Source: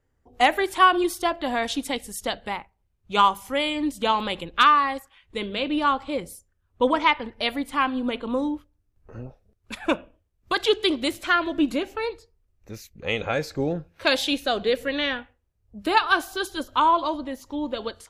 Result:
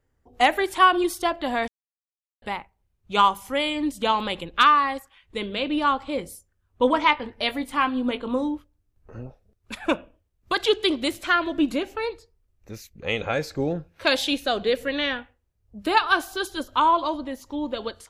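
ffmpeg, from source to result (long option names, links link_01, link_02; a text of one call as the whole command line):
ffmpeg -i in.wav -filter_complex "[0:a]asettb=1/sr,asplit=3[link_01][link_02][link_03];[link_01]atrim=end=6.154[link_04];[link_02]atrim=start=6.15:end=8.43,asetpts=PTS-STARTPTS,afade=type=in:duration=0.004:curve=qsin,afade=type=out:start_time=2.276:duration=0.004:curve=qsin,asplit=2[link_05][link_06];[link_06]adelay=20,volume=-11dB[link_07];[link_05][link_07]amix=inputs=2:normalize=0,atrim=end_sample=100548[link_08];[link_03]atrim=start=8.426[link_09];[link_04][link_08]acrossfade=duration=0.004:curve1=hsin:curve2=qsin[link_10];[link_10][link_09]acrossfade=duration=0.004:curve1=qsin:curve2=hsin,asplit=3[link_11][link_12][link_13];[link_11]atrim=end=1.68,asetpts=PTS-STARTPTS,afade=type=out:start_time=1.676:duration=0.004:curve=hsin[link_14];[link_12]atrim=start=1.68:end=2.42,asetpts=PTS-STARTPTS,volume=0[link_15];[link_13]atrim=start=2.42,asetpts=PTS-STARTPTS,afade=type=in:duration=0.004:curve=hsin[link_16];[link_14][link_15][link_16]concat=n=3:v=0:a=1" out.wav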